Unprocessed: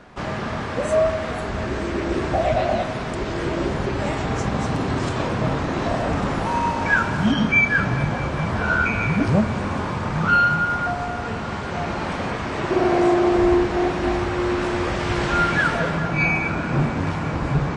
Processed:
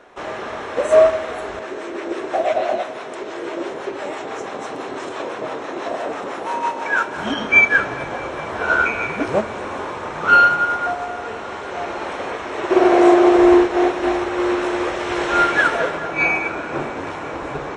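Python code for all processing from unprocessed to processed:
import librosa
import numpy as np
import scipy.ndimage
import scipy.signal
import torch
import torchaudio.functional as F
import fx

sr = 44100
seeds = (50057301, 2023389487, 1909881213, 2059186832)

y = fx.chain(x, sr, fx.highpass(hz=160.0, slope=12),
    fx.harmonic_tremolo(hz=6.0, depth_pct=50, crossover_hz=630.0), at=(1.59, 7.16))
y = fx.low_shelf_res(y, sr, hz=260.0, db=-13.0, q=1.5)
y = fx.notch(y, sr, hz=4700.0, q=6.6)
y = fx.upward_expand(y, sr, threshold_db=-27.0, expansion=1.5)
y = F.gain(torch.from_numpy(y), 6.0).numpy()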